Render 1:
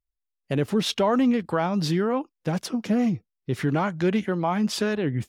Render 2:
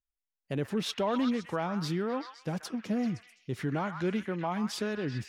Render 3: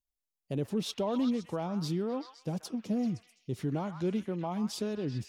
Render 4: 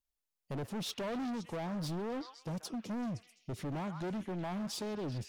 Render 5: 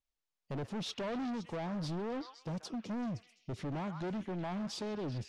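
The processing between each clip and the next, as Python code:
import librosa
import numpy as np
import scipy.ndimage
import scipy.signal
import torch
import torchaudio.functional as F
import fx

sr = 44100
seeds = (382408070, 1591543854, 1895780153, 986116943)

y1 = fx.echo_stepped(x, sr, ms=129, hz=1400.0, octaves=0.7, feedback_pct=70, wet_db=-4.5)
y1 = y1 * 10.0 ** (-8.0 / 20.0)
y2 = fx.peak_eq(y1, sr, hz=1700.0, db=-13.0, octaves=1.3)
y3 = np.clip(y2, -10.0 ** (-35.5 / 20.0), 10.0 ** (-35.5 / 20.0))
y4 = scipy.signal.sosfilt(scipy.signal.butter(2, 6200.0, 'lowpass', fs=sr, output='sos'), y3)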